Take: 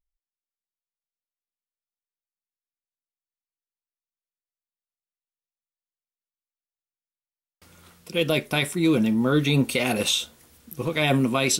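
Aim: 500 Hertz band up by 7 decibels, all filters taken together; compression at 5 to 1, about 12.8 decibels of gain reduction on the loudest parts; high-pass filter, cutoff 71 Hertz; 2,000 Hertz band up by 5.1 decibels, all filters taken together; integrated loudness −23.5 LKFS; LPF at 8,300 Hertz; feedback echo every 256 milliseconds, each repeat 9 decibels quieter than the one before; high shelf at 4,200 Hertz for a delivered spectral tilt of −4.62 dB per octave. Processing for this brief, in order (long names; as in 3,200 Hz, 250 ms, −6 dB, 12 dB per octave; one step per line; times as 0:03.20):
high-pass filter 71 Hz
low-pass filter 8,300 Hz
parametric band 500 Hz +8 dB
parametric band 2,000 Hz +7 dB
high-shelf EQ 4,200 Hz −3 dB
downward compressor 5 to 1, threshold −27 dBFS
repeating echo 256 ms, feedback 35%, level −9 dB
level +6.5 dB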